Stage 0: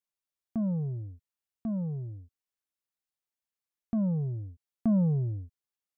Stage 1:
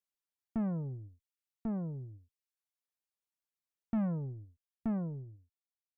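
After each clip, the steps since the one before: fade out at the end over 1.91 s; Chebyshev shaper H 4 -17 dB, 8 -39 dB, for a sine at -24 dBFS; reverb removal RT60 0.69 s; trim -3 dB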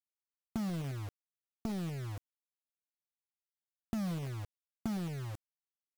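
compression 4:1, threshold -47 dBFS, peak gain reduction 14.5 dB; bit crusher 9-bit; trim +9.5 dB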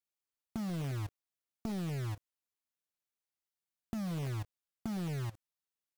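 level held to a coarse grid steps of 20 dB; trim +4 dB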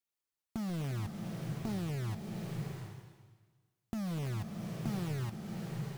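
swelling reverb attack 720 ms, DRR 2 dB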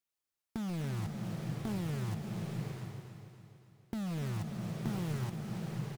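self-modulated delay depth 0.35 ms; feedback delay 283 ms, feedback 54%, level -10 dB

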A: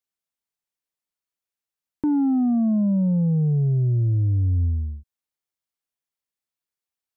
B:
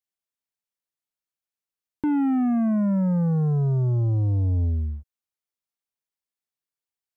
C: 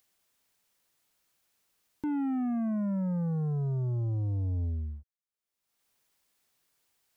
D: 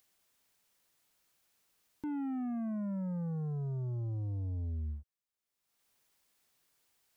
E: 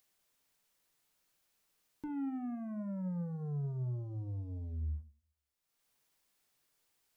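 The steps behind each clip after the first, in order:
waveshaping leveller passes 1; trim -2 dB
upward compressor, threshold -45 dBFS; trim -8.5 dB
peak limiter -34 dBFS, peak gain reduction 6 dB
simulated room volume 140 m³, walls furnished, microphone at 0.45 m; trim -3 dB

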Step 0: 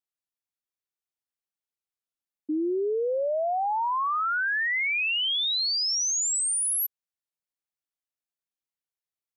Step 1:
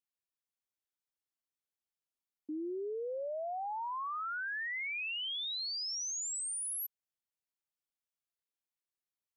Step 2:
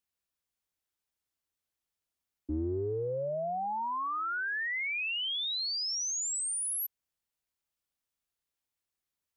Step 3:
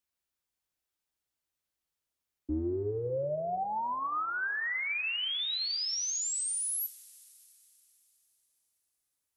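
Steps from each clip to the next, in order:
peak limiter -30.5 dBFS, peak gain reduction 7 dB; trim -4.5 dB
octave divider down 2 oct, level +1 dB; trim +4.5 dB
two-slope reverb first 0.3 s, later 4 s, from -18 dB, DRR 10 dB

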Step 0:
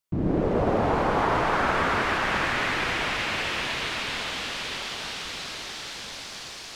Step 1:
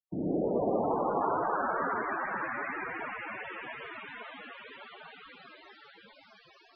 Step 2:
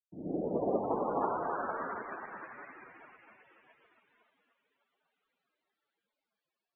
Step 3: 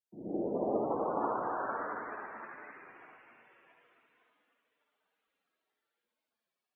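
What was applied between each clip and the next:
loudest bins only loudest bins 32; wow and flutter 28 cents; three-band isolator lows -21 dB, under 170 Hz, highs -19 dB, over 2.1 kHz; trim -4 dB
on a send: feedback echo behind a low-pass 276 ms, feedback 56%, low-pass 980 Hz, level -8 dB; on the sum: upward expansion 2.5:1, over -48 dBFS
frequency shift +22 Hz; on a send at -2 dB: reverberation RT60 0.50 s, pre-delay 50 ms; on the sum: trim -2.5 dB

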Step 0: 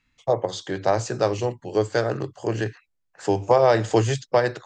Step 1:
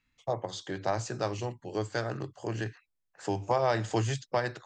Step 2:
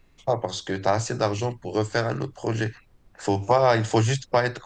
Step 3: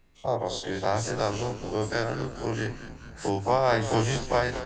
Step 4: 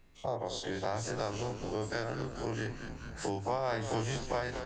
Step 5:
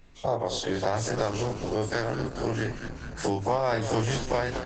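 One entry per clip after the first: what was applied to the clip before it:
dynamic bell 470 Hz, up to -7 dB, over -32 dBFS, Q 1.8; trim -6.5 dB
added noise brown -64 dBFS; trim +8 dB
every event in the spectrogram widened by 60 ms; frequency-shifting echo 215 ms, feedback 64%, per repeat -92 Hz, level -12 dB; trim -7 dB
compression 2:1, threshold -37 dBFS, peak gain reduction 10.5 dB
trim +8 dB; Opus 12 kbps 48 kHz

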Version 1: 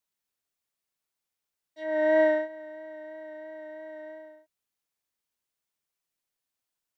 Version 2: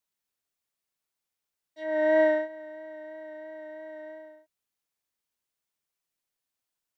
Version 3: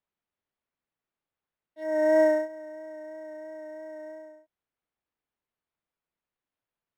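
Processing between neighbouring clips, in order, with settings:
no audible change
treble shelf 2.4 kHz -11.5 dB; decimation joined by straight lines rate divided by 6×; trim +2 dB

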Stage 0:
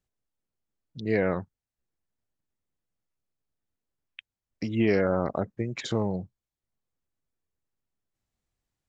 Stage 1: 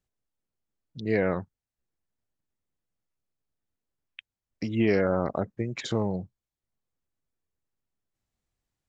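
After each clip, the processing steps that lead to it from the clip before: no audible change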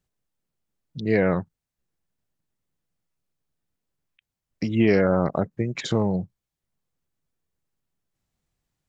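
peaking EQ 160 Hz +6 dB 0.44 oct; endings held to a fixed fall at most 600 dB/s; trim +4 dB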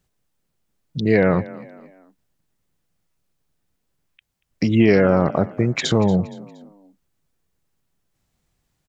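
in parallel at +1.5 dB: peak limiter -18.5 dBFS, peak gain reduction 11.5 dB; on the sum: frequency-shifting echo 234 ms, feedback 41%, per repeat +32 Hz, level -19 dB; trim +1.5 dB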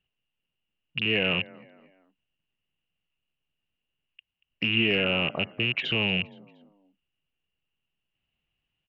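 rattle on loud lows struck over -21 dBFS, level -14 dBFS; four-pole ladder low-pass 2.9 kHz, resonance 90%

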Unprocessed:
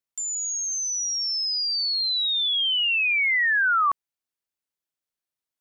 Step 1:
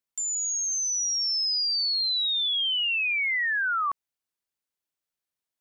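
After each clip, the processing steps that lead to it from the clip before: peak limiter -23 dBFS, peak gain reduction 6 dB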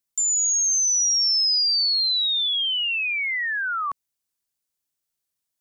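tone controls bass +5 dB, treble +8 dB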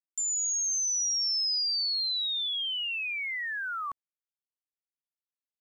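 word length cut 10-bit, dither none; trim -8 dB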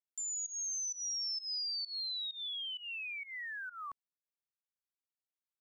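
volume shaper 130 bpm, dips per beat 1, -20 dB, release 178 ms; trim -8.5 dB

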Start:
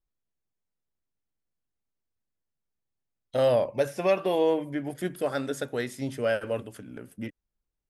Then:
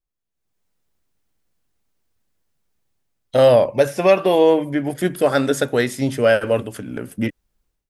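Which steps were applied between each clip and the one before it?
level rider gain up to 16 dB; trim -1.5 dB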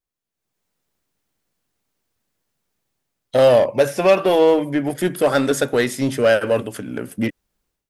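bass shelf 77 Hz -11.5 dB; in parallel at -10.5 dB: wavefolder -17.5 dBFS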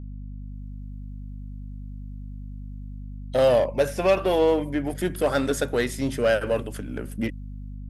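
hum 50 Hz, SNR 10 dB; trim -6 dB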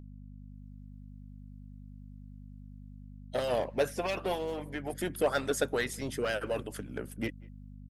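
speakerphone echo 190 ms, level -26 dB; harmonic-percussive split harmonic -14 dB; trim -3 dB

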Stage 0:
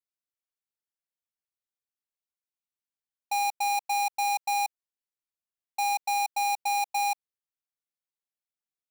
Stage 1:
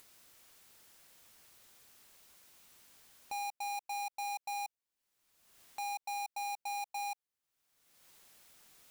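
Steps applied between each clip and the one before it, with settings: upward compressor, threshold -34 dBFS; peak limiter -36 dBFS, peak gain reduction 10 dB; trim -1.5 dB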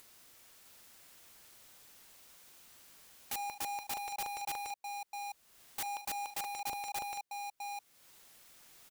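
multi-tap echo 44/78/658 ms -9/-14/-5 dB; integer overflow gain 37.5 dB; trim +1.5 dB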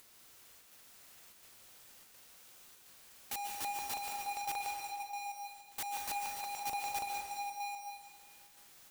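square tremolo 1.4 Hz, depth 65%, duty 85%; plate-style reverb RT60 1.5 s, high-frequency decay 0.95×, pre-delay 120 ms, DRR 1 dB; trim -1.5 dB

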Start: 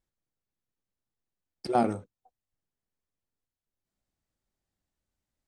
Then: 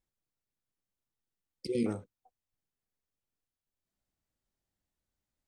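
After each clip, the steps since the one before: spectral replace 1.21–1.84 s, 530–1900 Hz before; trim -2.5 dB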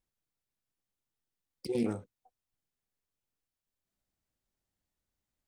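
self-modulated delay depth 0.09 ms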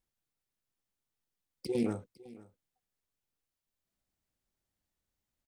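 delay 505 ms -20.5 dB

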